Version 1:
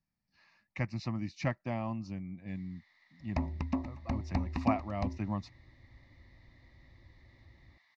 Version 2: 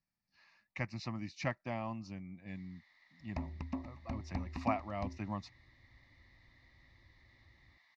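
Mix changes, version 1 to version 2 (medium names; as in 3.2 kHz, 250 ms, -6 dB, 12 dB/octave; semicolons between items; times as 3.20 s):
speech: add bass shelf 490 Hz -6.5 dB; second sound -7.0 dB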